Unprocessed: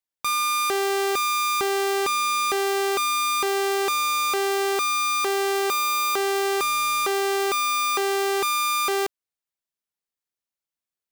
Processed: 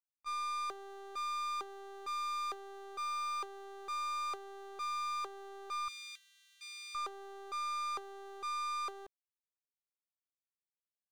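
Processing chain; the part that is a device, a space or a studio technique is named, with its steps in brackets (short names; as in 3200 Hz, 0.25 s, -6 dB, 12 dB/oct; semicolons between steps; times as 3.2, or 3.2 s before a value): walkie-talkie (BPF 480–2200 Hz; hard clip -27 dBFS, distortion -9 dB; gate -26 dBFS, range -48 dB); 5.88–6.95 steep high-pass 2100 Hz 36 dB/oct; gain +18 dB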